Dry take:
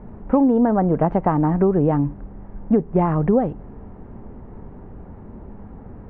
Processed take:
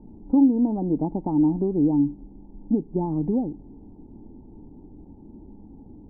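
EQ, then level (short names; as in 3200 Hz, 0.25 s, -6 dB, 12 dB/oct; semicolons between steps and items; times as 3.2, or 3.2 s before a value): vocal tract filter u; low shelf 110 Hz +5.5 dB; notches 50/100 Hz; +2.0 dB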